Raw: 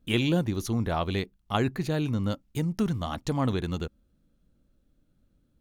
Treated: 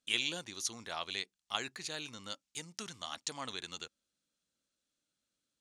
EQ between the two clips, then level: low-pass 8 kHz 24 dB/octave; differentiator; +6.5 dB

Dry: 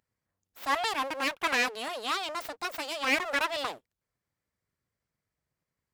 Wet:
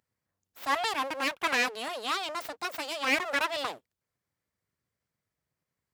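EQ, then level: high-pass 61 Hz; 0.0 dB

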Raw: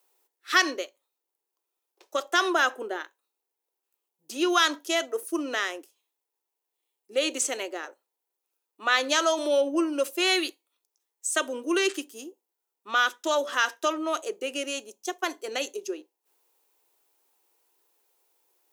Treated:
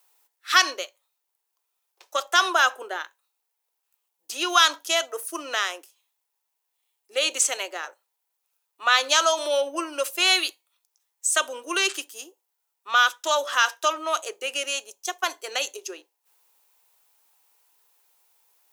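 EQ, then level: high-pass 770 Hz 12 dB/octave; dynamic bell 1.9 kHz, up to -6 dB, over -42 dBFS, Q 3.5; +6.0 dB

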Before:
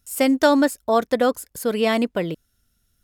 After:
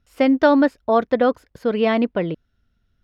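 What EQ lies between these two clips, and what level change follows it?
distance through air 280 m; +2.5 dB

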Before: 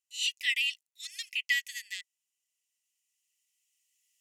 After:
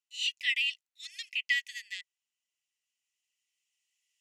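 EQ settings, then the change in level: band-pass filter 2.4 kHz, Q 0.66; 0.0 dB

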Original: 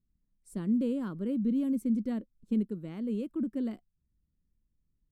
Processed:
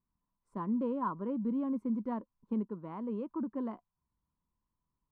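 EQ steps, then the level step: resonant low-pass 1 kHz, resonance Q 9.3; tilt EQ +4 dB/octave; bass shelf 200 Hz +7.5 dB; 0.0 dB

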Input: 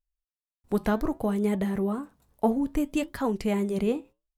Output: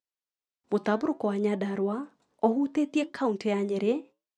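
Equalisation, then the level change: Chebyshev band-pass 280–7900 Hz, order 2; distance through air 130 m; treble shelf 5.8 kHz +11.5 dB; +1.5 dB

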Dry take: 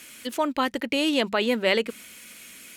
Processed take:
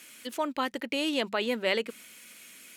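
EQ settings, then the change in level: bass shelf 110 Hz -11 dB; -5.0 dB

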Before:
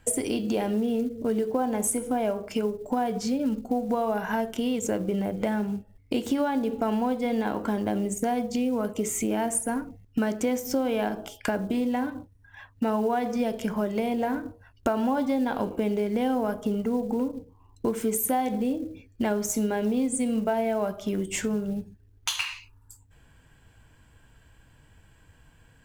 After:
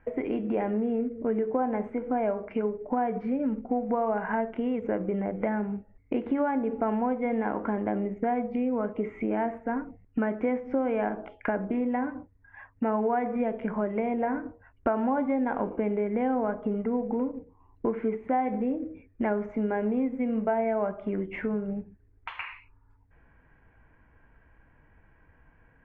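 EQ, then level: Chebyshev low-pass 2.2 kHz, order 4; peaking EQ 110 Hz -7 dB 1 oct; 0.0 dB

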